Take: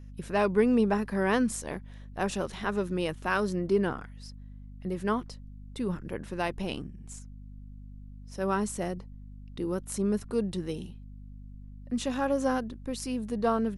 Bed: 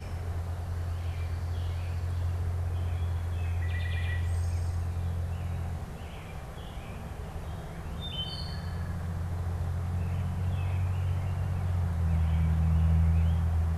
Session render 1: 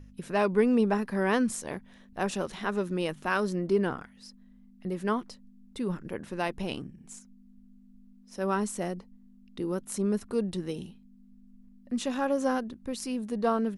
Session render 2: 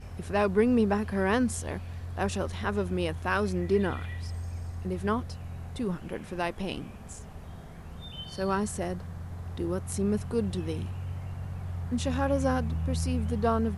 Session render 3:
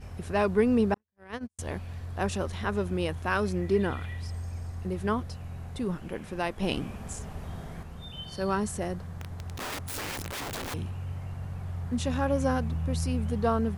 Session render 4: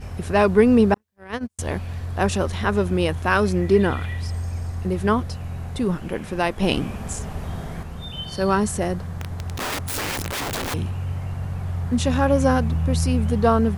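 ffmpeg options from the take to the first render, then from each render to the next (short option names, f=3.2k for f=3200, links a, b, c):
-af "bandreject=f=50:t=h:w=4,bandreject=f=100:t=h:w=4,bandreject=f=150:t=h:w=4"
-filter_complex "[1:a]volume=-6dB[a];[0:a][a]amix=inputs=2:normalize=0"
-filter_complex "[0:a]asettb=1/sr,asplit=3[a][b][c];[a]atrim=end=0.944[d];[b]atrim=start=0.94:end=1.59,asetpts=PTS-STARTPTS,afade=t=in:d=0.004:c=qsin,afade=t=out:st=0.646:d=0.004:c=qsin,agate=range=-56dB:threshold=-23dB:ratio=16:release=100:detection=peak[e];[c]atrim=start=1.586[f];[d][e]acrossfade=d=0.004:c1=hsin:c2=qsin[g];[g][f]acrossfade=d=0.004:c1=qsin:c2=hsin,asettb=1/sr,asplit=3[h][i][j];[h]atrim=end=9.124[k];[i]atrim=start=9.12:end=10.74,asetpts=PTS-STARTPTS,afade=t=in:d=0.004:c=qsin,afade=t=out:st=1.616:d=0.004:c=qsin,aeval=exprs='(mod(33.5*val(0)+1,2)-1)/33.5':c=same[l];[j]atrim=start=10.736[m];[k][l]acrossfade=d=0.004:c1=hsin:c2=qsin[n];[n][m]acrossfade=d=0.004:c1=qsin:c2=hsin,asplit=3[o][p][q];[o]atrim=end=6.622[r];[p]atrim=start=6.618:end=7.832,asetpts=PTS-STARTPTS,volume=5dB[s];[q]atrim=start=7.828[t];[r][s]acrossfade=d=0.004:c1=hsin:c2=hsin[u];[u][t]acrossfade=d=0.004:c1=hsin:c2=hsin"
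-af "volume=8.5dB"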